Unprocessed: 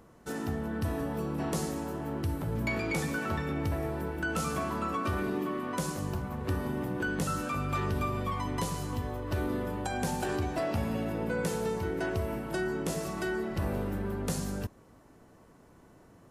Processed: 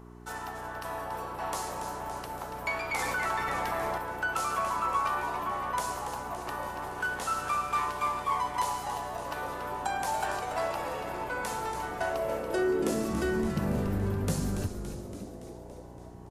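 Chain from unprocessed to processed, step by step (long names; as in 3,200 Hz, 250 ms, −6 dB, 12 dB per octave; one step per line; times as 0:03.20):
0:06.82–0:08.57: variable-slope delta modulation 64 kbit/s
high-pass filter sweep 890 Hz → 76 Hz, 0:11.86–0:14.34
hum with harmonics 60 Hz, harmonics 7, −49 dBFS −2 dB per octave
echo with shifted repeats 283 ms, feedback 63%, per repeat −150 Hz, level −8.5 dB
0:02.99–0:03.98: envelope flattener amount 70%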